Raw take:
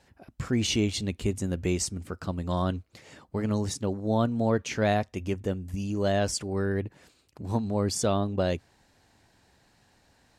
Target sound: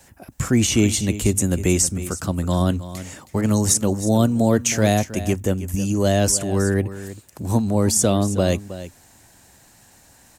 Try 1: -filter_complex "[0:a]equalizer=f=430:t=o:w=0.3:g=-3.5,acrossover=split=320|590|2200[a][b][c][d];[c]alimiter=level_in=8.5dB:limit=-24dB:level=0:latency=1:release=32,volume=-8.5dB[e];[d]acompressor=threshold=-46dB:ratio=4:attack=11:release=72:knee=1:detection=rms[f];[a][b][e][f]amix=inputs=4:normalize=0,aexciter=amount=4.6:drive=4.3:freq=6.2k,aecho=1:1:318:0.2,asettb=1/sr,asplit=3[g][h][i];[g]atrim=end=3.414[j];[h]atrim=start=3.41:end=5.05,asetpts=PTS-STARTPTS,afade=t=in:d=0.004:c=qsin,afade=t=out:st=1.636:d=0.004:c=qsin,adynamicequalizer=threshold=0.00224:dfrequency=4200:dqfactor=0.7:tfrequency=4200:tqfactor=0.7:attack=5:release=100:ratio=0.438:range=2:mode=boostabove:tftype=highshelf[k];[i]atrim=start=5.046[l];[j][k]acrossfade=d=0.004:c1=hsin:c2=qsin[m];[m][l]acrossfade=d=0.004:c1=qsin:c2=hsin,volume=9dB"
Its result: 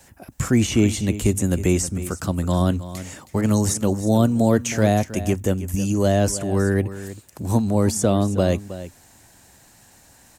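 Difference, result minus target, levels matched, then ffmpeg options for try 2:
compressor: peak gain reduction +7.5 dB
-filter_complex "[0:a]equalizer=f=430:t=o:w=0.3:g=-3.5,acrossover=split=320|590|2200[a][b][c][d];[c]alimiter=level_in=8.5dB:limit=-24dB:level=0:latency=1:release=32,volume=-8.5dB[e];[d]acompressor=threshold=-36dB:ratio=4:attack=11:release=72:knee=1:detection=rms[f];[a][b][e][f]amix=inputs=4:normalize=0,aexciter=amount=4.6:drive=4.3:freq=6.2k,aecho=1:1:318:0.2,asettb=1/sr,asplit=3[g][h][i];[g]atrim=end=3.414[j];[h]atrim=start=3.41:end=5.05,asetpts=PTS-STARTPTS,afade=t=in:d=0.004:c=qsin,afade=t=out:st=1.636:d=0.004:c=qsin,adynamicequalizer=threshold=0.00224:dfrequency=4200:dqfactor=0.7:tfrequency=4200:tqfactor=0.7:attack=5:release=100:ratio=0.438:range=2:mode=boostabove:tftype=highshelf[k];[i]atrim=start=5.046[l];[j][k]acrossfade=d=0.004:c1=hsin:c2=qsin[m];[m][l]acrossfade=d=0.004:c1=qsin:c2=hsin,volume=9dB"

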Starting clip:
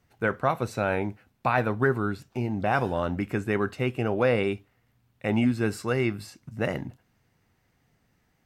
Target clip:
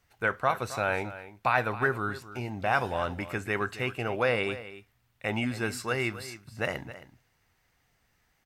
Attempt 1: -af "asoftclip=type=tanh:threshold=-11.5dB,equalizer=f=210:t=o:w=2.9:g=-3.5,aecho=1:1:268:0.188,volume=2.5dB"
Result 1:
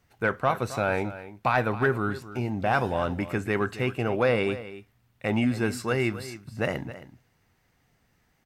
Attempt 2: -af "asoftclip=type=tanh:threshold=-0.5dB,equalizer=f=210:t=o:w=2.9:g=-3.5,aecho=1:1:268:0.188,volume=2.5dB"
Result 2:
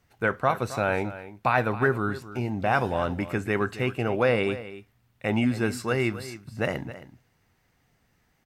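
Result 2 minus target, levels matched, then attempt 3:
250 Hz band +4.0 dB
-af "asoftclip=type=tanh:threshold=-0.5dB,equalizer=f=210:t=o:w=2.9:g=-11.5,aecho=1:1:268:0.188,volume=2.5dB"

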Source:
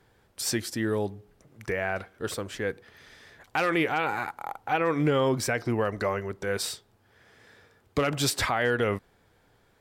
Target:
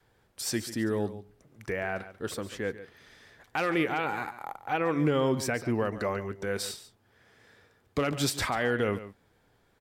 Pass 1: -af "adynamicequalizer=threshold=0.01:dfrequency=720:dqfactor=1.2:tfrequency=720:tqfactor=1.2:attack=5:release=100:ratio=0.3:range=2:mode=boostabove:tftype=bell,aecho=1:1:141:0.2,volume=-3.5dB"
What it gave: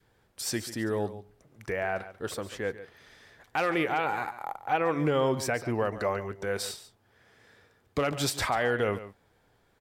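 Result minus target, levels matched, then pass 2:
250 Hz band -3.0 dB
-af "adynamicequalizer=threshold=0.01:dfrequency=240:dqfactor=1.2:tfrequency=240:tqfactor=1.2:attack=5:release=100:ratio=0.3:range=2:mode=boostabove:tftype=bell,aecho=1:1:141:0.2,volume=-3.5dB"

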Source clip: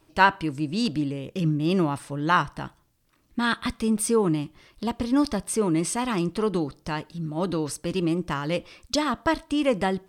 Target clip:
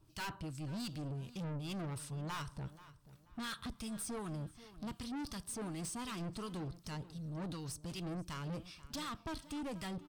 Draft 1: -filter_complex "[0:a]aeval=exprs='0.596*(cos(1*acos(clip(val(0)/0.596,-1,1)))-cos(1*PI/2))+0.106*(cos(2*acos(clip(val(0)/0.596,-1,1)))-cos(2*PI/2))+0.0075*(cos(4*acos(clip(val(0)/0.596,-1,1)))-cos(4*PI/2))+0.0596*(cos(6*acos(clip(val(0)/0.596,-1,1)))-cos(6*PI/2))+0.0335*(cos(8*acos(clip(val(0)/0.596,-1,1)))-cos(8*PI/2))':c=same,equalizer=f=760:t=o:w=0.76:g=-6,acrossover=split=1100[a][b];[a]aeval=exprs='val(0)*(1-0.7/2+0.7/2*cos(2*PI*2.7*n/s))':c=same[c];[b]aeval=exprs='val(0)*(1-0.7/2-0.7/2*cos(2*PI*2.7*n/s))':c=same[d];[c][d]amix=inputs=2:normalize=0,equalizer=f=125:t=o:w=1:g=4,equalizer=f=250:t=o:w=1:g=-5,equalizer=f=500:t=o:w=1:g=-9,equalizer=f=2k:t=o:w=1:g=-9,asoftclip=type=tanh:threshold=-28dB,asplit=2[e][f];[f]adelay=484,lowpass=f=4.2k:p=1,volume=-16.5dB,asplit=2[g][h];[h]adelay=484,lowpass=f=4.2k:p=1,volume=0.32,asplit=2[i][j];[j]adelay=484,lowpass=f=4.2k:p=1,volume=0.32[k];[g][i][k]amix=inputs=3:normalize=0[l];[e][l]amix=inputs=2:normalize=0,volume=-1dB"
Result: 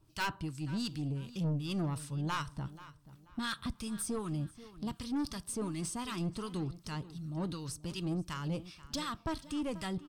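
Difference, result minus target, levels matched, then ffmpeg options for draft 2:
soft clip: distortion -6 dB
-filter_complex "[0:a]aeval=exprs='0.596*(cos(1*acos(clip(val(0)/0.596,-1,1)))-cos(1*PI/2))+0.106*(cos(2*acos(clip(val(0)/0.596,-1,1)))-cos(2*PI/2))+0.0075*(cos(4*acos(clip(val(0)/0.596,-1,1)))-cos(4*PI/2))+0.0596*(cos(6*acos(clip(val(0)/0.596,-1,1)))-cos(6*PI/2))+0.0335*(cos(8*acos(clip(val(0)/0.596,-1,1)))-cos(8*PI/2))':c=same,equalizer=f=760:t=o:w=0.76:g=-6,acrossover=split=1100[a][b];[a]aeval=exprs='val(0)*(1-0.7/2+0.7/2*cos(2*PI*2.7*n/s))':c=same[c];[b]aeval=exprs='val(0)*(1-0.7/2-0.7/2*cos(2*PI*2.7*n/s))':c=same[d];[c][d]amix=inputs=2:normalize=0,equalizer=f=125:t=o:w=1:g=4,equalizer=f=250:t=o:w=1:g=-5,equalizer=f=500:t=o:w=1:g=-9,equalizer=f=2k:t=o:w=1:g=-9,asoftclip=type=tanh:threshold=-38dB,asplit=2[e][f];[f]adelay=484,lowpass=f=4.2k:p=1,volume=-16.5dB,asplit=2[g][h];[h]adelay=484,lowpass=f=4.2k:p=1,volume=0.32,asplit=2[i][j];[j]adelay=484,lowpass=f=4.2k:p=1,volume=0.32[k];[g][i][k]amix=inputs=3:normalize=0[l];[e][l]amix=inputs=2:normalize=0,volume=-1dB"

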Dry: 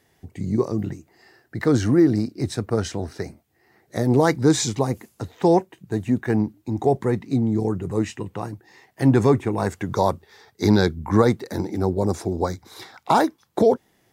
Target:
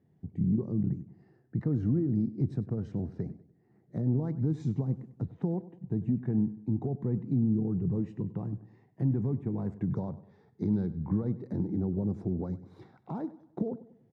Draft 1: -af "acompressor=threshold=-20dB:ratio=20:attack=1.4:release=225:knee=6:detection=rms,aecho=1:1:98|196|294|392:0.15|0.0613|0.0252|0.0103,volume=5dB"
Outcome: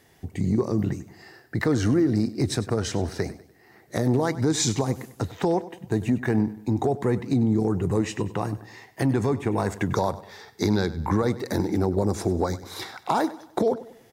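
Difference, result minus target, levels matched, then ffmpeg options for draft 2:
125 Hz band -3.0 dB
-af "acompressor=threshold=-20dB:ratio=20:attack=1.4:release=225:knee=6:detection=rms,bandpass=f=160:t=q:w=2:csg=0,aecho=1:1:98|196|294|392:0.15|0.0613|0.0252|0.0103,volume=5dB"

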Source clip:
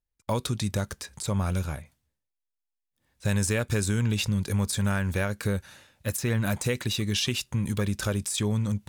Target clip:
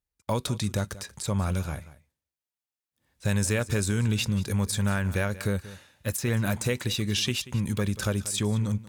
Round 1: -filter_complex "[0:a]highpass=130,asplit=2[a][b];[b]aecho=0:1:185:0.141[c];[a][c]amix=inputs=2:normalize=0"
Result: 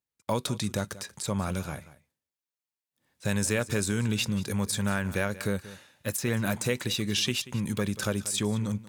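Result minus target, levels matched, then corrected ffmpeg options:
125 Hz band -3.0 dB
-filter_complex "[0:a]highpass=36,asplit=2[a][b];[b]aecho=0:1:185:0.141[c];[a][c]amix=inputs=2:normalize=0"

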